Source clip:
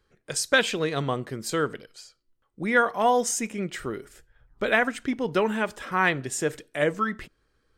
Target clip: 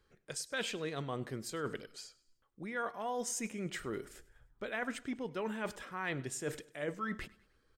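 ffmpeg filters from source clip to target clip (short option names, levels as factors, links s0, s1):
-af "areverse,acompressor=threshold=0.0224:ratio=5,areverse,aecho=1:1:101|202|303:0.0891|0.0383|0.0165,volume=0.708"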